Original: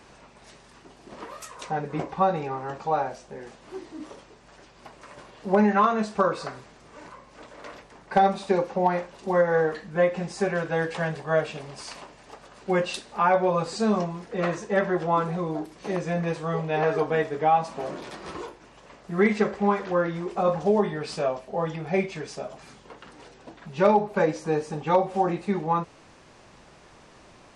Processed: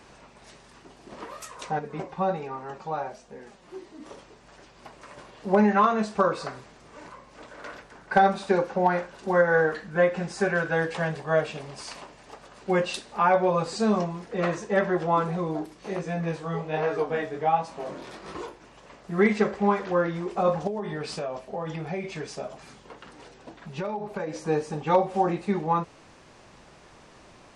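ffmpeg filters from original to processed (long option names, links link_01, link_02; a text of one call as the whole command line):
ffmpeg -i in.wav -filter_complex "[0:a]asettb=1/sr,asplit=3[link_01][link_02][link_03];[link_01]atrim=end=1.794[link_04];[link_02]atrim=start=1.79:end=4.06,asetpts=PTS-STARTPTS,afade=type=in:duration=0.004:curve=qsin,afade=type=out:start_time=2.266:duration=0.004:curve=qsin,flanger=delay=4.2:depth=1.5:regen=43:speed=1.3:shape=sinusoidal[link_05];[link_03]atrim=start=4.056[link_06];[link_04][link_05]acrossfade=duration=0.004:curve1=hsin:curve2=qsin[link_07];[link_07][link_06]acrossfade=duration=0.004:curve1=qsin:curve2=hsin,asettb=1/sr,asplit=3[link_08][link_09][link_10];[link_08]atrim=end=7.474[link_11];[link_09]atrim=start=7.47:end=10.8,asetpts=PTS-STARTPTS,afade=type=in:duration=0.004:curve=qsin,afade=type=out:start_time=3.326:duration=0.004:curve=qsin,equalizer=frequency=1500:width_type=o:width=0.28:gain=8[link_12];[link_10]atrim=start=10.796[link_13];[link_11][link_12]acrossfade=duration=0.004:curve1=hsin:curve2=qsin[link_14];[link_14][link_13]acrossfade=duration=0.004:curve1=qsin:curve2=hsin,asplit=3[link_15][link_16][link_17];[link_15]afade=type=out:start_time=15.73:duration=0.02[link_18];[link_16]flanger=delay=16:depth=7.6:speed=1.3,afade=type=in:start_time=15.73:duration=0.02,afade=type=out:start_time=18.34:duration=0.02[link_19];[link_17]afade=type=in:start_time=18.34:duration=0.02[link_20];[link_18][link_19][link_20]amix=inputs=3:normalize=0,asettb=1/sr,asplit=3[link_21][link_22][link_23];[link_21]atrim=end=20.674[link_24];[link_22]atrim=start=20.67:end=24.38,asetpts=PTS-STARTPTS,afade=type=in:duration=0.004:curve=qsin,afade=type=out:start_time=3.706:duration=0.004:curve=qsin,acompressor=threshold=-27dB:ratio=10:attack=3.2:release=140:knee=1:detection=peak[link_25];[link_23]atrim=start=24.376[link_26];[link_24][link_25]acrossfade=duration=0.004:curve1=hsin:curve2=qsin[link_27];[link_27][link_26]acrossfade=duration=0.004:curve1=qsin:curve2=hsin" out.wav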